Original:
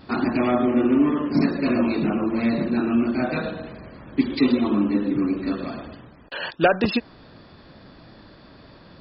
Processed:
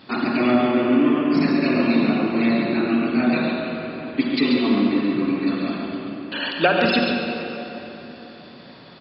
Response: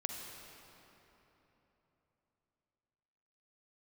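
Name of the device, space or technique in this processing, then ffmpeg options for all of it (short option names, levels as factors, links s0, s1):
PA in a hall: -filter_complex "[0:a]highpass=140,equalizer=f=3200:t=o:w=1.5:g=7,aecho=1:1:139:0.447[s0];[1:a]atrim=start_sample=2205[s1];[s0][s1]afir=irnorm=-1:irlink=0"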